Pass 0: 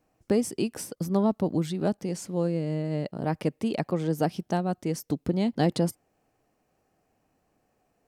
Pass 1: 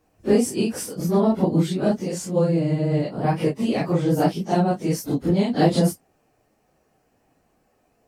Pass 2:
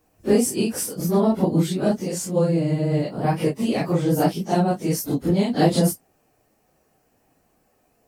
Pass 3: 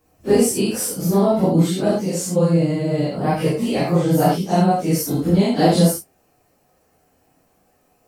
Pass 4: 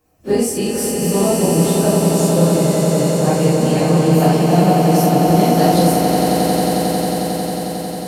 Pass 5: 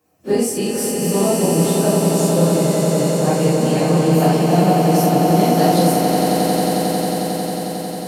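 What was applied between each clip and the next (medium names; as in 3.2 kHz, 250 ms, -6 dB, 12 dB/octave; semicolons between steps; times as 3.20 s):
phase randomisation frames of 100 ms; trim +6.5 dB
treble shelf 8.9 kHz +10 dB
gated-style reverb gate 100 ms flat, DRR -1 dB
echo with a slow build-up 90 ms, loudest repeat 8, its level -7 dB; trim -1 dB
high-pass 120 Hz; trim -1 dB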